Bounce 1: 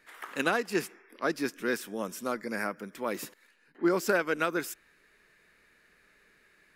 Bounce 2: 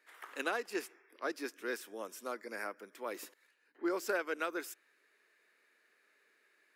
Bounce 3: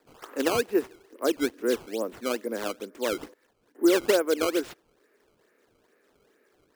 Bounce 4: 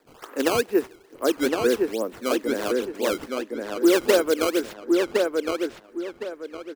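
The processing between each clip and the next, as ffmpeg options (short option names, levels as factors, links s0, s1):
-af "highpass=f=300:w=0.5412,highpass=f=300:w=1.3066,volume=0.422"
-af "equalizer=f=125:t=o:w=1:g=7,equalizer=f=250:t=o:w=1:g=9,equalizer=f=500:t=o:w=1:g=7,equalizer=f=2000:t=o:w=1:g=-4,equalizer=f=4000:t=o:w=1:g=-10,equalizer=f=8000:t=o:w=1:g=-4,acrusher=samples=14:mix=1:aa=0.000001:lfo=1:lforange=22.4:lforate=2.3,volume=2"
-filter_complex "[0:a]asplit=2[s0][s1];[s1]adelay=1062,lowpass=f=4300:p=1,volume=0.708,asplit=2[s2][s3];[s3]adelay=1062,lowpass=f=4300:p=1,volume=0.3,asplit=2[s4][s5];[s5]adelay=1062,lowpass=f=4300:p=1,volume=0.3,asplit=2[s6][s7];[s7]adelay=1062,lowpass=f=4300:p=1,volume=0.3[s8];[s0][s2][s4][s6][s8]amix=inputs=5:normalize=0,volume=1.41"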